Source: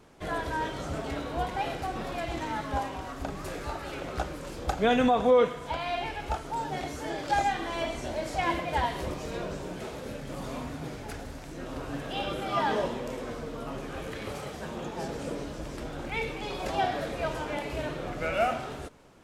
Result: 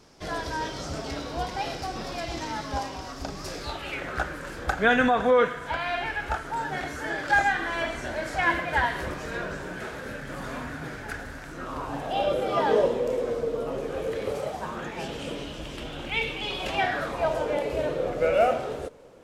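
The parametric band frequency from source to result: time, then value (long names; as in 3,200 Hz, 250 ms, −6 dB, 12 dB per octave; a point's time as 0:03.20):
parametric band +13.5 dB 0.64 octaves
0:03.57 5,200 Hz
0:04.10 1,600 Hz
0:11.43 1,600 Hz
0:12.47 480 Hz
0:14.38 480 Hz
0:15.06 3,000 Hz
0:16.67 3,000 Hz
0:17.46 500 Hz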